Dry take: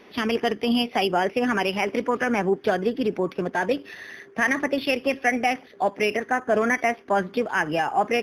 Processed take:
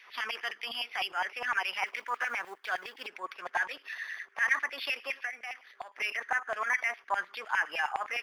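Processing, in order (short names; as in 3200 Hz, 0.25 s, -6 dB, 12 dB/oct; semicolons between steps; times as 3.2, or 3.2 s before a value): 1.86–3.07 G.711 law mismatch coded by A; limiter -16 dBFS, peak gain reduction 7.5 dB; 5.13–5.96 compressor 6:1, threshold -31 dBFS, peak gain reduction 10.5 dB; LFO high-pass saw down 9.8 Hz 900–2300 Hz; gain -4.5 dB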